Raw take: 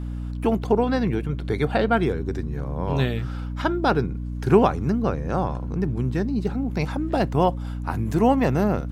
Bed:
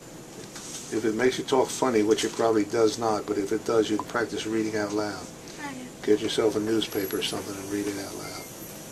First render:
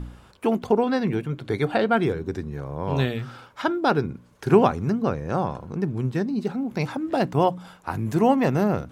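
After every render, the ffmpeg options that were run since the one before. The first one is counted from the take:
-af "bandreject=f=60:t=h:w=4,bandreject=f=120:t=h:w=4,bandreject=f=180:t=h:w=4,bandreject=f=240:t=h:w=4,bandreject=f=300:t=h:w=4"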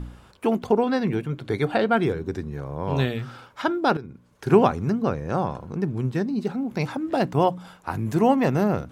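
-filter_complex "[0:a]asplit=2[a][b];[a]atrim=end=3.97,asetpts=PTS-STARTPTS,afade=t=out:st=3.966:d=0.004:c=hsin:silence=0.177828[c];[b]atrim=start=3.97,asetpts=PTS-STARTPTS,afade=t=in:d=0.58:silence=0.177828[d];[c][d]concat=n=2:v=0:a=1"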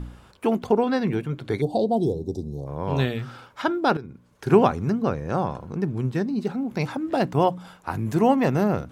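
-filter_complex "[0:a]asplit=3[a][b][c];[a]afade=t=out:st=1.6:d=0.02[d];[b]asuperstop=centerf=1800:order=8:qfactor=0.57,afade=t=in:st=1.6:d=0.02,afade=t=out:st=2.66:d=0.02[e];[c]afade=t=in:st=2.66:d=0.02[f];[d][e][f]amix=inputs=3:normalize=0"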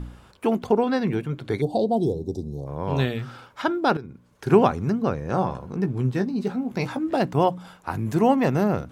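-filter_complex "[0:a]asettb=1/sr,asplit=3[a][b][c];[a]atrim=end=5.284[d];[b]atrim=start=5.28:end=7.16,asetpts=PTS-STARTPTS,afade=t=in:d=0.004:c=qsin,afade=t=out:st=1.876:d=0.004:c=qsin,asplit=2[e][f];[f]adelay=16,volume=-8dB[g];[e][g]amix=inputs=2:normalize=0,atrim=end_sample=82908[h];[c]atrim=start=7.156[i];[d][h]acrossfade=d=0.004:c1=hsin:c2=qsin[j];[j][i]acrossfade=d=0.004:c1=qsin:c2=hsin"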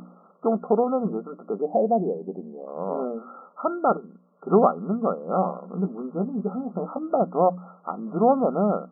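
-af "afftfilt=real='re*between(b*sr/4096,170,1400)':imag='im*between(b*sr/4096,170,1400)':win_size=4096:overlap=0.75,aecho=1:1:1.6:0.49"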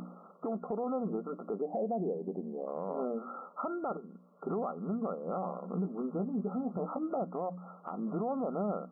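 -af "acompressor=threshold=-33dB:ratio=2,alimiter=level_in=2dB:limit=-24dB:level=0:latency=1:release=36,volume=-2dB"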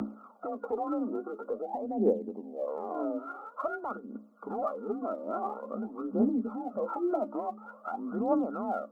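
-af "afreqshift=35,aphaser=in_gain=1:out_gain=1:delay=3.4:decay=0.72:speed=0.48:type=triangular"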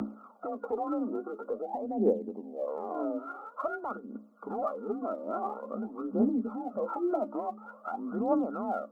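-af anull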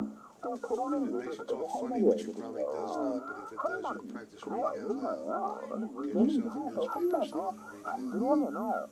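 -filter_complex "[1:a]volume=-21dB[a];[0:a][a]amix=inputs=2:normalize=0"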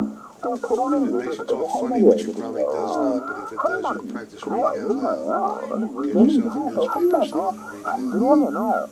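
-af "volume=11.5dB"

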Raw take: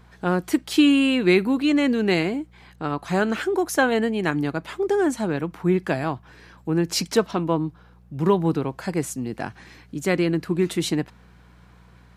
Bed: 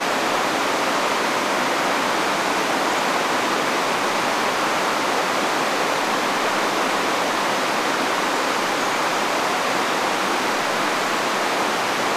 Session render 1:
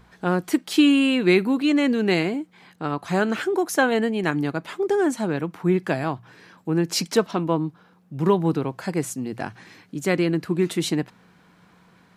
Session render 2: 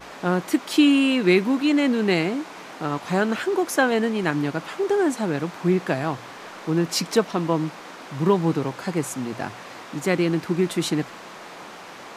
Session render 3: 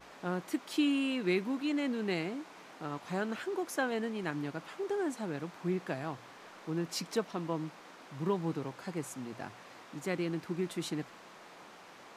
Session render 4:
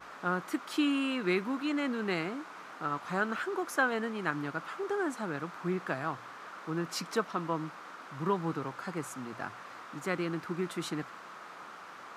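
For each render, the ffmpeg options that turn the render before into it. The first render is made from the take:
-af "bandreject=f=60:t=h:w=4,bandreject=f=120:t=h:w=4"
-filter_complex "[1:a]volume=-19dB[a];[0:a][a]amix=inputs=2:normalize=0"
-af "volume=-13dB"
-af "highpass=49,equalizer=f=1.3k:w=1.8:g=11.5"

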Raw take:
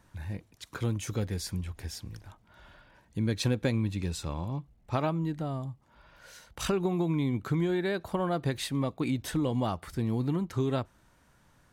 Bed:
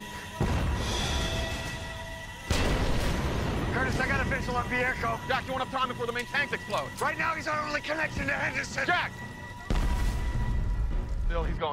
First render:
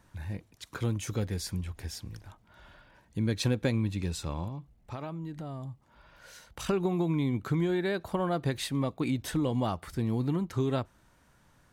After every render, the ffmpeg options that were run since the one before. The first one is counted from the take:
-filter_complex "[0:a]asettb=1/sr,asplit=3[a][b][c];[a]atrim=end=4.484[d];[b]atrim=start=4.48:end=6.69,asetpts=PTS-STARTPTS,afade=t=in:d=0.004:c=qsin,afade=t=out:st=2.206:d=0.004:c=qsin,acompressor=threshold=-36dB:ratio=4:attack=3.2:release=140:knee=1:detection=peak[e];[c]atrim=start=6.686[f];[d][e]acrossfade=d=0.004:c1=hsin:c2=qsin[g];[g][f]acrossfade=d=0.004:c1=qsin:c2=hsin"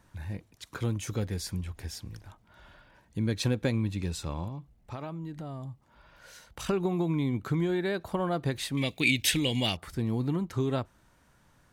-filter_complex "[0:a]asettb=1/sr,asplit=3[a][b][c];[a]atrim=end=8.774[d];[b]atrim=start=8.77:end=9.77,asetpts=PTS-STARTPTS,afade=t=in:d=0.004:c=qsin,afade=t=out:st=0.996:d=0.004:c=qsin,highshelf=f=1.7k:t=q:w=3:g=12[e];[c]atrim=start=9.766[f];[d][e]acrossfade=d=0.004:c1=hsin:c2=qsin[g];[g][f]acrossfade=d=0.004:c1=qsin:c2=hsin"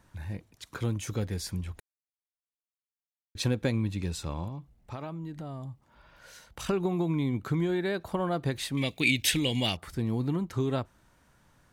-filter_complex "[0:a]asplit=3[a][b][c];[a]atrim=end=1.8,asetpts=PTS-STARTPTS,afade=t=out:st=1.796:d=0.004:c=hsin[d];[b]atrim=start=1.8:end=3.35,asetpts=PTS-STARTPTS,volume=0[e];[c]atrim=start=3.35,asetpts=PTS-STARTPTS,afade=t=in:d=0.004:c=hsin[f];[d][e][f]concat=n=3:v=0:a=1"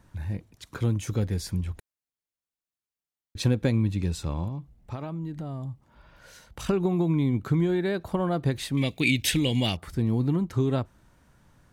-af "lowshelf=f=400:g=6"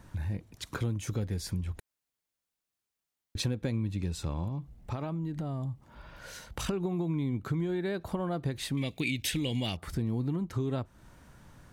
-filter_complex "[0:a]asplit=2[a][b];[b]alimiter=limit=-18.5dB:level=0:latency=1:release=204,volume=-2.5dB[c];[a][c]amix=inputs=2:normalize=0,acompressor=threshold=-34dB:ratio=2.5"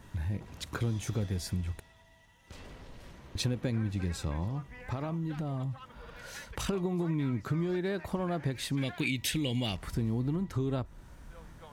-filter_complex "[1:a]volume=-22dB[a];[0:a][a]amix=inputs=2:normalize=0"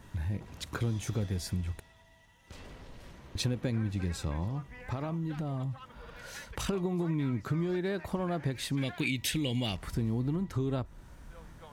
-af anull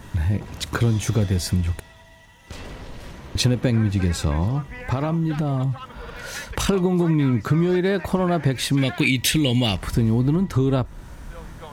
-af "volume=12dB"

